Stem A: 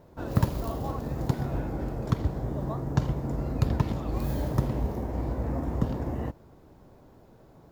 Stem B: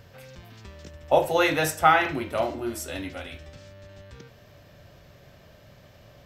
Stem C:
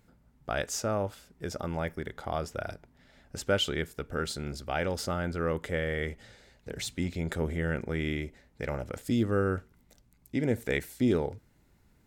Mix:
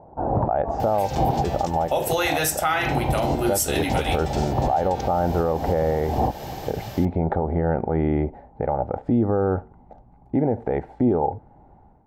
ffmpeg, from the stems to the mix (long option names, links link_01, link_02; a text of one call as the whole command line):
ffmpeg -i stem1.wav -i stem2.wav -i stem3.wav -filter_complex "[0:a]asoftclip=type=tanh:threshold=-17.5dB,volume=2dB[link_01];[1:a]highshelf=frequency=4200:gain=11,adelay=800,volume=-1dB[link_02];[2:a]volume=-0.5dB,asplit=2[link_03][link_04];[link_04]apad=whole_len=340417[link_05];[link_01][link_05]sidechaincompress=threshold=-53dB:ratio=3:attack=9.5:release=102[link_06];[link_06][link_03]amix=inputs=2:normalize=0,lowpass=frequency=800:width_type=q:width=7.5,alimiter=limit=-16.5dB:level=0:latency=1:release=199,volume=0dB[link_07];[link_02][link_07]amix=inputs=2:normalize=0,dynaudnorm=framelen=160:gausssize=5:maxgain=13.5dB,alimiter=limit=-12dB:level=0:latency=1:release=148" out.wav